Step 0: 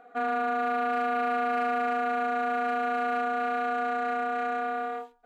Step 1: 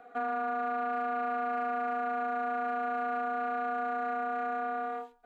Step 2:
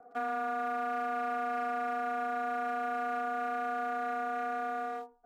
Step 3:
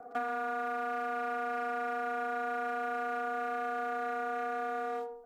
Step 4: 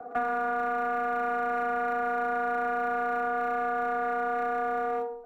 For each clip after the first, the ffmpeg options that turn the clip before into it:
ffmpeg -i in.wav -filter_complex "[0:a]acrossover=split=300|640|1500[link_01][link_02][link_03][link_04];[link_01]acompressor=threshold=-45dB:ratio=4[link_05];[link_02]acompressor=threshold=-45dB:ratio=4[link_06];[link_03]acompressor=threshold=-31dB:ratio=4[link_07];[link_04]acompressor=threshold=-53dB:ratio=4[link_08];[link_05][link_06][link_07][link_08]amix=inputs=4:normalize=0" out.wav
ffmpeg -i in.wav -filter_complex "[0:a]highshelf=frequency=2500:gain=8.5,acrossover=split=550|1200[link_01][link_02][link_03];[link_03]aeval=exprs='sgn(val(0))*max(abs(val(0))-0.00178,0)':channel_layout=same[link_04];[link_01][link_02][link_04]amix=inputs=3:normalize=0,volume=-2dB" out.wav
ffmpeg -i in.wav -filter_complex "[0:a]asplit=2[link_01][link_02];[link_02]adelay=70,lowpass=frequency=900:poles=1,volume=-8dB,asplit=2[link_03][link_04];[link_04]adelay=70,lowpass=frequency=900:poles=1,volume=0.51,asplit=2[link_05][link_06];[link_06]adelay=70,lowpass=frequency=900:poles=1,volume=0.51,asplit=2[link_07][link_08];[link_08]adelay=70,lowpass=frequency=900:poles=1,volume=0.51,asplit=2[link_09][link_10];[link_10]adelay=70,lowpass=frequency=900:poles=1,volume=0.51,asplit=2[link_11][link_12];[link_12]adelay=70,lowpass=frequency=900:poles=1,volume=0.51[link_13];[link_03][link_05][link_07][link_09][link_11][link_13]amix=inputs=6:normalize=0[link_14];[link_01][link_14]amix=inputs=2:normalize=0,acompressor=threshold=-40dB:ratio=3,volume=7dB" out.wav
ffmpeg -i in.wav -filter_complex "[0:a]asoftclip=type=tanh:threshold=-25dB,acrossover=split=140|340|2800[link_01][link_02][link_03][link_04];[link_04]acrusher=samples=27:mix=1:aa=0.000001[link_05];[link_01][link_02][link_03][link_05]amix=inputs=4:normalize=0,volume=7dB" out.wav

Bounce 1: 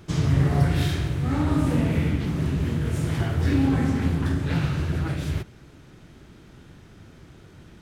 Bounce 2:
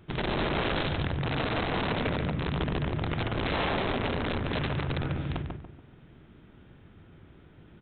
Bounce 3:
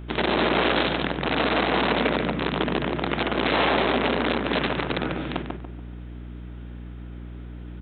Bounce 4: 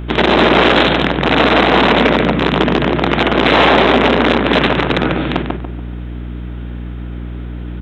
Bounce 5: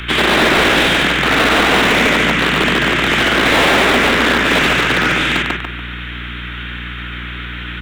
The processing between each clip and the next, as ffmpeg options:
ffmpeg -i in.wav -filter_complex "[0:a]aresample=8000,aeval=exprs='(mod(7.94*val(0)+1,2)-1)/7.94':channel_layout=same,aresample=44100,asplit=2[link_01][link_02];[link_02]adelay=143,lowpass=frequency=1400:poles=1,volume=-3dB,asplit=2[link_03][link_04];[link_04]adelay=143,lowpass=frequency=1400:poles=1,volume=0.38,asplit=2[link_05][link_06];[link_06]adelay=143,lowpass=frequency=1400:poles=1,volume=0.38,asplit=2[link_07][link_08];[link_08]adelay=143,lowpass=frequency=1400:poles=1,volume=0.38,asplit=2[link_09][link_10];[link_10]adelay=143,lowpass=frequency=1400:poles=1,volume=0.38[link_11];[link_01][link_03][link_05][link_07][link_09][link_11]amix=inputs=6:normalize=0,volume=-7dB" out.wav
ffmpeg -i in.wav -af "highpass=frequency=200:width=0.5412,highpass=frequency=200:width=1.3066,aeval=exprs='val(0)+0.00631*(sin(2*PI*60*n/s)+sin(2*PI*2*60*n/s)/2+sin(2*PI*3*60*n/s)/3+sin(2*PI*4*60*n/s)/4+sin(2*PI*5*60*n/s)/5)':channel_layout=same,volume=8dB" out.wav
ffmpeg -i in.wav -af "acontrast=46,apsyclip=8dB,volume=-1.5dB" out.wav
ffmpeg -i in.wav -filter_complex "[0:a]acrossover=split=270|900|1300[link_01][link_02][link_03][link_04];[link_03]acrusher=samples=27:mix=1:aa=0.000001[link_05];[link_04]asplit=2[link_06][link_07];[link_07]highpass=frequency=720:poles=1,volume=33dB,asoftclip=type=tanh:threshold=-1.5dB[link_08];[link_06][link_08]amix=inputs=2:normalize=0,lowpass=frequency=2500:poles=1,volume=-6dB[link_09];[link_01][link_02][link_05][link_09]amix=inputs=4:normalize=0,volume=-4dB" out.wav

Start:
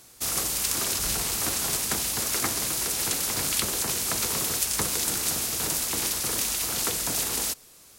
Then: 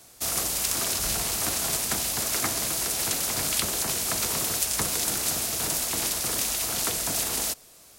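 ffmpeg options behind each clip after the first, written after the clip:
ffmpeg -i in.wav -filter_complex "[0:a]equalizer=frequency=660:width=3.7:gain=6.5,acrossover=split=410|720|2000[link_01][link_02][link_03][link_04];[link_02]alimiter=level_in=15.5dB:limit=-24dB:level=0:latency=1,volume=-15.5dB[link_05];[link_01][link_05][link_03][link_04]amix=inputs=4:normalize=0" out.wav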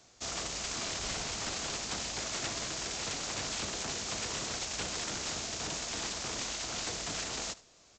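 ffmpeg -i in.wav -af "aresample=16000,aeval=exprs='(mod(13.3*val(0)+1,2)-1)/13.3':channel_layout=same,aresample=44100,aecho=1:1:76:0.112,volume=-6dB" out.wav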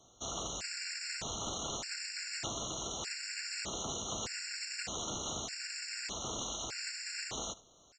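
ffmpeg -i in.wav -af "afftfilt=real='re*gt(sin(2*PI*0.82*pts/sr)*(1-2*mod(floor(b*sr/1024/1400),2)),0)':imag='im*gt(sin(2*PI*0.82*pts/sr)*(1-2*mod(floor(b*sr/1024/1400),2)),0)':win_size=1024:overlap=0.75" out.wav

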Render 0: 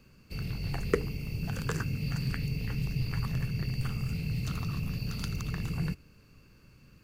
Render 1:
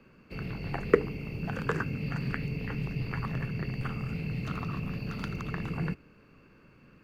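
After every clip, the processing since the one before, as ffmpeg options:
ffmpeg -i in.wav -filter_complex "[0:a]acrossover=split=190 2700:gain=0.251 1 0.112[link_01][link_02][link_03];[link_01][link_02][link_03]amix=inputs=3:normalize=0,volume=6dB" out.wav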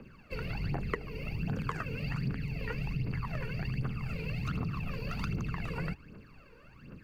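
ffmpeg -i in.wav -af "aphaser=in_gain=1:out_gain=1:delay=2.2:decay=0.72:speed=1.3:type=triangular,acompressor=threshold=-31dB:ratio=5" out.wav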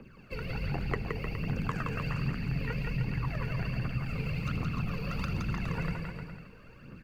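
ffmpeg -i in.wav -af "aecho=1:1:170|306|414.8|501.8|571.5:0.631|0.398|0.251|0.158|0.1" out.wav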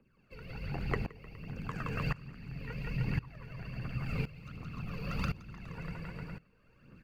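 ffmpeg -i in.wav -af "aeval=exprs='val(0)*pow(10,-20*if(lt(mod(-0.94*n/s,1),2*abs(-0.94)/1000),1-mod(-0.94*n/s,1)/(2*abs(-0.94)/1000),(mod(-0.94*n/s,1)-2*abs(-0.94)/1000)/(1-2*abs(-0.94)/1000))/20)':channel_layout=same,volume=1.5dB" out.wav

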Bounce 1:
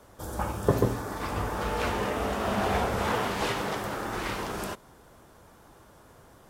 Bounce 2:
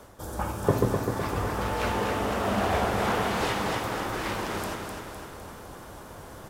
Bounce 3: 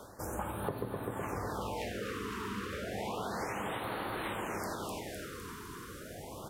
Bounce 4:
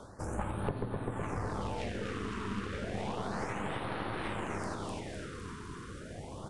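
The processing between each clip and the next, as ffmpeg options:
ffmpeg -i in.wav -af "areverse,acompressor=mode=upward:threshold=-35dB:ratio=2.5,areverse,aecho=1:1:254|508|762|1016|1270|1524|1778:0.562|0.315|0.176|0.0988|0.0553|0.031|0.0173" out.wav
ffmpeg -i in.wav -af "lowshelf=frequency=69:gain=-9.5,acompressor=threshold=-34dB:ratio=6,afftfilt=real='re*(1-between(b*sr/1024,640*pow(6500/640,0.5+0.5*sin(2*PI*0.31*pts/sr))/1.41,640*pow(6500/640,0.5+0.5*sin(2*PI*0.31*pts/sr))*1.41))':imag='im*(1-between(b*sr/1024,640*pow(6500/640,0.5+0.5*sin(2*PI*0.31*pts/sr))/1.41,640*pow(6500/640,0.5+0.5*sin(2*PI*0.31*pts/sr))*1.41))':win_size=1024:overlap=0.75" out.wav
ffmpeg -i in.wav -af "aeval=exprs='0.0944*(cos(1*acos(clip(val(0)/0.0944,-1,1)))-cos(1*PI/2))+0.0168*(cos(4*acos(clip(val(0)/0.0944,-1,1)))-cos(4*PI/2))':channel_layout=same,bass=frequency=250:gain=6,treble=frequency=4000:gain=-3,aresample=22050,aresample=44100,volume=-1dB" out.wav

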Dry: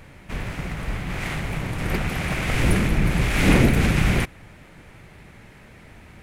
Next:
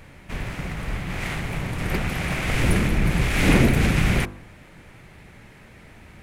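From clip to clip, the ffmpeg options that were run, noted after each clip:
ffmpeg -i in.wav -af "bandreject=frequency=50.03:width_type=h:width=4,bandreject=frequency=100.06:width_type=h:width=4,bandreject=frequency=150.09:width_type=h:width=4,bandreject=frequency=200.12:width_type=h:width=4,bandreject=frequency=250.15:width_type=h:width=4,bandreject=frequency=300.18:width_type=h:width=4,bandreject=frequency=350.21:width_type=h:width=4,bandreject=frequency=400.24:width_type=h:width=4,bandreject=frequency=450.27:width_type=h:width=4,bandreject=frequency=500.3:width_type=h:width=4,bandreject=frequency=550.33:width_type=h:width=4,bandreject=frequency=600.36:width_type=h:width=4,bandreject=frequency=650.39:width_type=h:width=4,bandreject=frequency=700.42:width_type=h:width=4,bandreject=frequency=750.45:width_type=h:width=4,bandreject=frequency=800.48:width_type=h:width=4,bandreject=frequency=850.51:width_type=h:width=4,bandreject=frequency=900.54:width_type=h:width=4,bandreject=frequency=950.57:width_type=h:width=4,bandreject=frequency=1000.6:width_type=h:width=4,bandreject=frequency=1050.63:width_type=h:width=4,bandreject=frequency=1100.66:width_type=h:width=4,bandreject=frequency=1150.69:width_type=h:width=4,bandreject=frequency=1200.72:width_type=h:width=4,bandreject=frequency=1250.75:width_type=h:width=4,bandreject=frequency=1300.78:width_type=h:width=4,bandreject=frequency=1350.81:width_type=h:width=4,bandreject=frequency=1400.84:width_type=h:width=4,bandreject=frequency=1450.87:width_type=h:width=4,bandreject=frequency=1500.9:width_type=h:width=4,bandreject=frequency=1550.93:width_type=h:width=4,bandreject=frequency=1600.96:width_type=h:width=4" out.wav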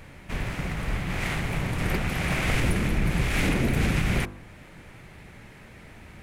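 ffmpeg -i in.wav -af "alimiter=limit=-14dB:level=0:latency=1:release=416" out.wav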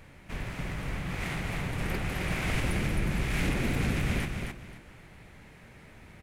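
ffmpeg -i in.wav -af "aecho=1:1:264|528|792:0.562|0.135|0.0324,volume=-6dB" out.wav

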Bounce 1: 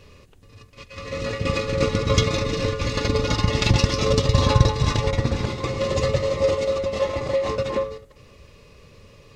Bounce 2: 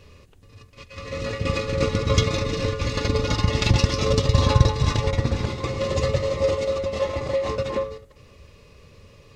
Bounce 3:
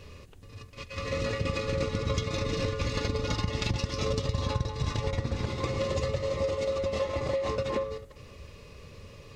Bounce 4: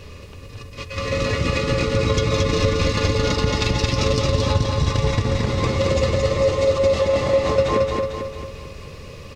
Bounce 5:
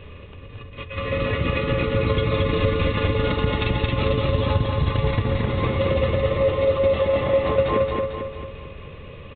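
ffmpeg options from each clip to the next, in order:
ffmpeg -i in.wav -af "equalizer=frequency=77:width=1.9:gain=3.5,volume=-1.5dB" out.wav
ffmpeg -i in.wav -af "acompressor=threshold=-28dB:ratio=6,volume=1.5dB" out.wav
ffmpeg -i in.wav -af "aecho=1:1:223|446|669|892|1115|1338|1561:0.708|0.354|0.177|0.0885|0.0442|0.0221|0.0111,volume=8.5dB" out.wav
ffmpeg -i in.wav -af "aresample=8000,aresample=44100,volume=-1.5dB" out.wav

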